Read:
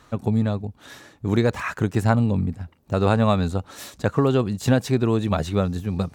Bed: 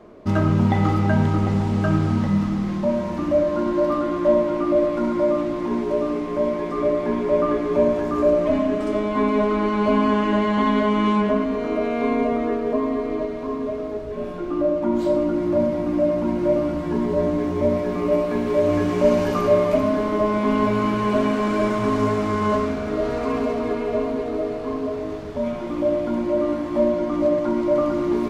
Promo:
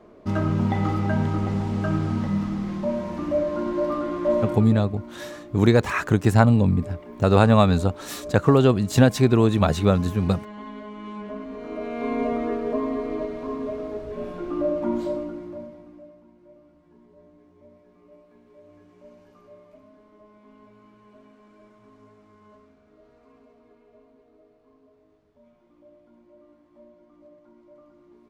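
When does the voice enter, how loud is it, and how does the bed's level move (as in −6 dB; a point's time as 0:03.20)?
4.30 s, +3.0 dB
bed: 0:04.51 −4.5 dB
0:04.81 −19 dB
0:10.97 −19 dB
0:12.26 −3.5 dB
0:14.91 −3.5 dB
0:16.31 −32.5 dB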